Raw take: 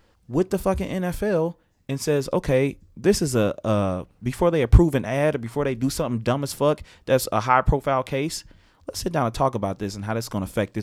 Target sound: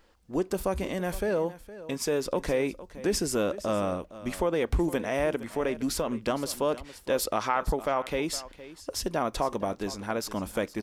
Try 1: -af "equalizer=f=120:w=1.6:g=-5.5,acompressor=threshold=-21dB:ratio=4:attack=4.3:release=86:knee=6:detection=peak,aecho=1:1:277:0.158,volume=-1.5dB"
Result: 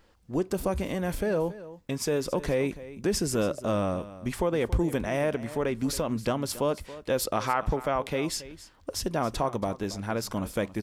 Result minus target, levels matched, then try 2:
echo 0.186 s early; 125 Hz band +4.0 dB
-af "equalizer=f=120:w=1.6:g=-15,acompressor=threshold=-21dB:ratio=4:attack=4.3:release=86:knee=6:detection=peak,aecho=1:1:463:0.158,volume=-1.5dB"

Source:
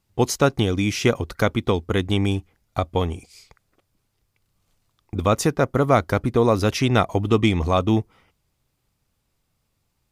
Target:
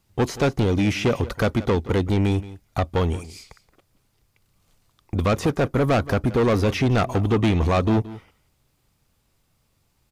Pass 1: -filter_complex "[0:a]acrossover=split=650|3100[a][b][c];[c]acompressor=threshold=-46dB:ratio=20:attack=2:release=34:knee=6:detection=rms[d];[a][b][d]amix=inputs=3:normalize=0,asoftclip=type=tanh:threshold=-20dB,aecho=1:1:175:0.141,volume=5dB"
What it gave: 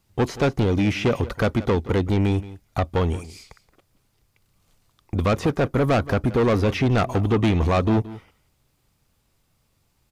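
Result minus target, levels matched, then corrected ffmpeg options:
compressor: peak gain reduction +6 dB
-filter_complex "[0:a]acrossover=split=650|3100[a][b][c];[c]acompressor=threshold=-39.5dB:ratio=20:attack=2:release=34:knee=6:detection=rms[d];[a][b][d]amix=inputs=3:normalize=0,asoftclip=type=tanh:threshold=-20dB,aecho=1:1:175:0.141,volume=5dB"

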